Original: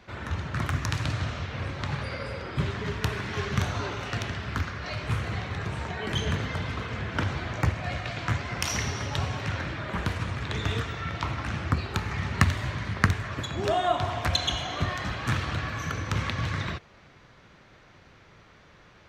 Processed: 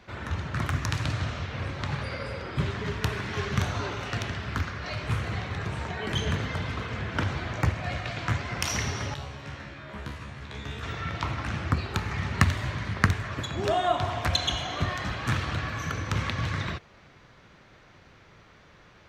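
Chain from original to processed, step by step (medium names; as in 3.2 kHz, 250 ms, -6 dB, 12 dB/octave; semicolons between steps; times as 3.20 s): 9.14–10.83 s: feedback comb 70 Hz, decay 0.39 s, harmonics all, mix 90%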